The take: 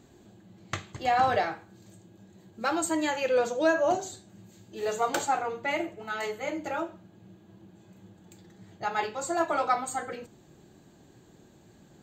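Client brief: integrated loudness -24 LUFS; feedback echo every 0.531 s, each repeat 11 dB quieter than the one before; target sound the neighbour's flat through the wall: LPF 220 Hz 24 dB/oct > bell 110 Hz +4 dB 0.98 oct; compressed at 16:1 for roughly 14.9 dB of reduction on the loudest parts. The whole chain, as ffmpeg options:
-af "acompressor=threshold=-35dB:ratio=16,lowpass=f=220:w=0.5412,lowpass=f=220:w=1.3066,equalizer=f=110:t=o:w=0.98:g=4,aecho=1:1:531|1062|1593:0.282|0.0789|0.0221,volume=30dB"

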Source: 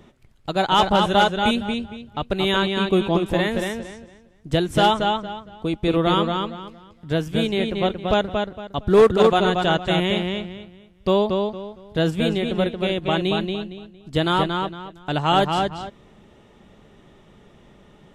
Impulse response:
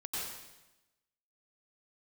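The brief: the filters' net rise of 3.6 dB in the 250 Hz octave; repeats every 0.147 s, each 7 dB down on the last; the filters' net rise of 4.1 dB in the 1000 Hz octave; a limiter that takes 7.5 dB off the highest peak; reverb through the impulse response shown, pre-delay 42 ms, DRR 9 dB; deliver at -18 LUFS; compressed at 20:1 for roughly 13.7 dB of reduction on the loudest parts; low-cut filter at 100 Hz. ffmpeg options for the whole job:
-filter_complex "[0:a]highpass=100,equalizer=f=250:t=o:g=5.5,equalizer=f=1k:t=o:g=5,acompressor=threshold=-21dB:ratio=20,alimiter=limit=-18.5dB:level=0:latency=1,aecho=1:1:147|294|441|588|735:0.447|0.201|0.0905|0.0407|0.0183,asplit=2[a][b];[1:a]atrim=start_sample=2205,adelay=42[c];[b][c]afir=irnorm=-1:irlink=0,volume=-11.5dB[d];[a][d]amix=inputs=2:normalize=0,volume=10dB"

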